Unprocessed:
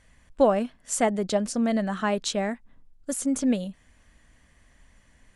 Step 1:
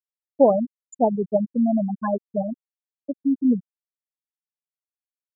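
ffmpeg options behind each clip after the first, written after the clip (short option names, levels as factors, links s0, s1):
-af "afftfilt=real='re*gte(hypot(re,im),0.316)':imag='im*gte(hypot(re,im),0.316)':win_size=1024:overlap=0.75,volume=1.68"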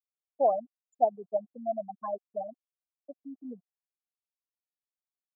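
-filter_complex "[0:a]asplit=3[s0][s1][s2];[s0]bandpass=f=730:t=q:w=8,volume=1[s3];[s1]bandpass=f=1090:t=q:w=8,volume=0.501[s4];[s2]bandpass=f=2440:t=q:w=8,volume=0.355[s5];[s3][s4][s5]amix=inputs=3:normalize=0"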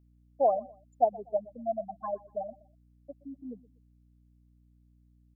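-af "aecho=1:1:122|244:0.0891|0.0258,aeval=exprs='val(0)+0.000891*(sin(2*PI*60*n/s)+sin(2*PI*2*60*n/s)/2+sin(2*PI*3*60*n/s)/3+sin(2*PI*4*60*n/s)/4+sin(2*PI*5*60*n/s)/5)':c=same"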